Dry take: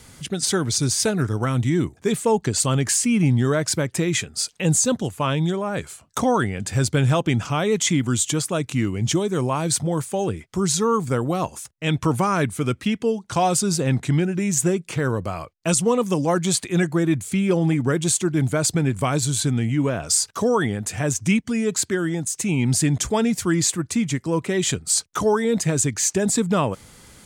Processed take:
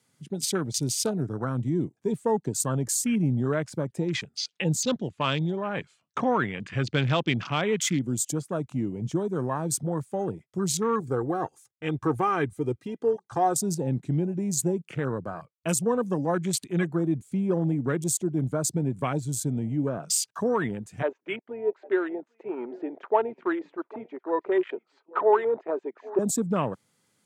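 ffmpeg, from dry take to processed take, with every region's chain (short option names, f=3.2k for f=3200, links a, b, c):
-filter_complex "[0:a]asettb=1/sr,asplit=3[a][b][c];[a]atrim=end=4.374[d];[b]atrim=start=4.37:end=7.81,asetpts=PTS-STARTPTS,afade=t=in:d=0.004:c=qsin,afade=t=out:st=3.436:d=0.004:c=qsin,lowpass=5.3k,equalizer=f=3.3k:t=o:w=2.1:g=7.5[e];[c]atrim=start=7.806[f];[d][e]acrossfade=d=0.004:c1=hsin:c2=qsin[g];[g][f]acrossfade=d=0.004:c1=qsin:c2=hsin,asettb=1/sr,asplit=3[h][i][j];[h]atrim=end=11.004[k];[i]atrim=start=11:end=13.57,asetpts=PTS-STARTPTS,afade=t=in:d=0.004:c=qsin,afade=t=out:st=2.566:d=0.004:c=qsin,equalizer=f=2.8k:t=o:w=0.69:g=-2.5,aecho=1:1:2.5:0.69,atrim=end_sample=113337[l];[j]atrim=start=13.566[m];[k][l]acrossfade=d=0.004:c1=hsin:c2=qsin[n];[n][m]acrossfade=d=0.004:c1=qsin:c2=hsin,asettb=1/sr,asplit=3[o][p][q];[o]atrim=end=21.024[r];[p]atrim=start=21.02:end=26.19,asetpts=PTS-STARTPTS,afade=t=in:d=0.004:c=qsin,afade=t=out:st=5.166:d=0.004:c=qsin,highpass=f=370:w=0.5412,highpass=f=370:w=1.3066,equalizer=f=380:t=q:w=4:g=9,equalizer=f=630:t=q:w=4:g=6,equalizer=f=910:t=q:w=4:g=8,equalizer=f=1.3k:t=q:w=4:g=4,lowpass=f=2.5k:w=0.5412,lowpass=f=2.5k:w=1.3066,aecho=1:1:799:0.106,atrim=end_sample=227997[s];[q]atrim=start=26.186[t];[r][s]acrossfade=d=0.004:c1=hsin:c2=qsin[u];[u][t]acrossfade=d=0.004:c1=qsin:c2=hsin,highpass=f=120:w=0.5412,highpass=f=120:w=1.3066,afwtdn=0.0355,volume=-5.5dB"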